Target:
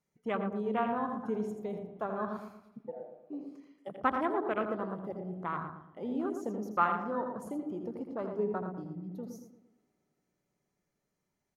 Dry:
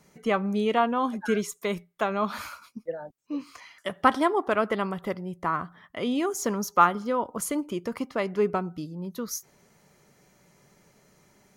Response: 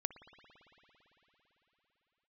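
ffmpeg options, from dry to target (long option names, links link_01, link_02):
-filter_complex "[0:a]asplit=2[link_01][link_02];[1:a]atrim=start_sample=2205,lowshelf=frequency=150:gain=12,adelay=82[link_03];[link_02][link_03]afir=irnorm=-1:irlink=0,volume=-7dB[link_04];[link_01][link_04]amix=inputs=2:normalize=0,afwtdn=0.0398,asplit=2[link_05][link_06];[link_06]adelay=115,lowpass=frequency=1300:poles=1,volume=-6dB,asplit=2[link_07][link_08];[link_08]adelay=115,lowpass=frequency=1300:poles=1,volume=0.43,asplit=2[link_09][link_10];[link_10]adelay=115,lowpass=frequency=1300:poles=1,volume=0.43,asplit=2[link_11][link_12];[link_12]adelay=115,lowpass=frequency=1300:poles=1,volume=0.43,asplit=2[link_13][link_14];[link_14]adelay=115,lowpass=frequency=1300:poles=1,volume=0.43[link_15];[link_05][link_07][link_09][link_11][link_13][link_15]amix=inputs=6:normalize=0,volume=-9dB"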